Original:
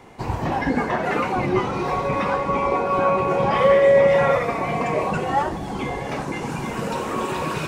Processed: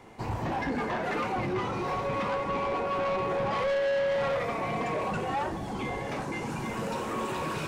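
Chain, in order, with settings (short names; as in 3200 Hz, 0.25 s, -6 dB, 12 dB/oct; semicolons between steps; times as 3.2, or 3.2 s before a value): in parallel at +2 dB: limiter -12 dBFS, peak gain reduction 7 dB; on the sum: resonator 110 Hz, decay 0.24 s, harmonics all, mix 50%; soft clip -17 dBFS, distortion -9 dB; gain -8 dB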